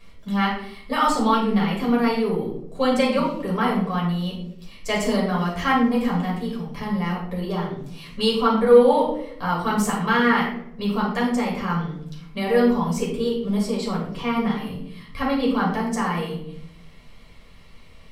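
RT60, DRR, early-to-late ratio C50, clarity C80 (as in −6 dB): 0.75 s, −4.5 dB, 4.0 dB, 7.0 dB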